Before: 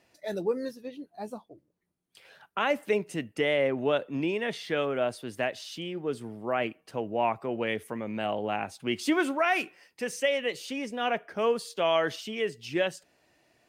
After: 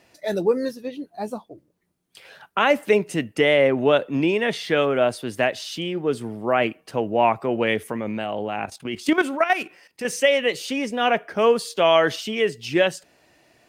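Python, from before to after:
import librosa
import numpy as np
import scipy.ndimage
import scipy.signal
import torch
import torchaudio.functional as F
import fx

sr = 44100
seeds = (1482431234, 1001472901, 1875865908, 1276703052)

y = fx.level_steps(x, sr, step_db=12, at=(7.92, 10.05))
y = y * 10.0 ** (8.5 / 20.0)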